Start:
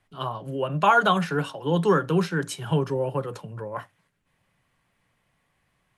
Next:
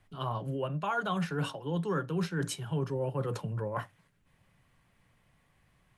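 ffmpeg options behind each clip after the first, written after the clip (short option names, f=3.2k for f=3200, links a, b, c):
-af "lowshelf=f=180:g=7.5,areverse,acompressor=threshold=-30dB:ratio=5,areverse"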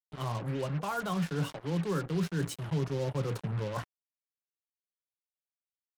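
-af "lowshelf=f=460:g=6,acrusher=bits=5:mix=0:aa=0.5,volume=-4dB"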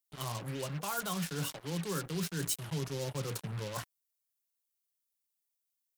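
-af "crystalizer=i=4.5:c=0,volume=-5.5dB"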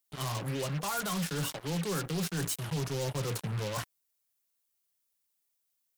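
-af "volume=34.5dB,asoftclip=hard,volume=-34.5dB,volume=5.5dB"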